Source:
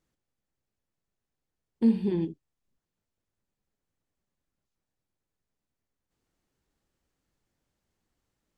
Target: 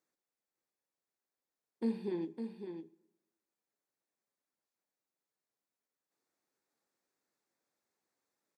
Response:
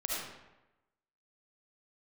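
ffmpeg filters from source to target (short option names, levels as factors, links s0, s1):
-filter_complex "[0:a]highpass=350,equalizer=f=3000:w=6.8:g=-12.5,aecho=1:1:556:0.422,asplit=2[s0][s1];[1:a]atrim=start_sample=2205[s2];[s1][s2]afir=irnorm=-1:irlink=0,volume=0.0531[s3];[s0][s3]amix=inputs=2:normalize=0,volume=0.596"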